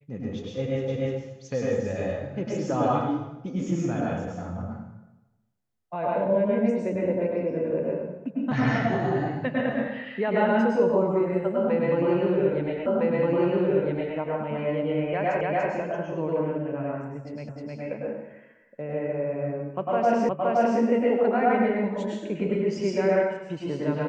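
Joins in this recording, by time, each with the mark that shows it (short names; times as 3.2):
0.88 repeat of the last 0.3 s
12.86 repeat of the last 1.31 s
15.41 repeat of the last 0.29 s
17.49 repeat of the last 0.31 s
20.29 repeat of the last 0.52 s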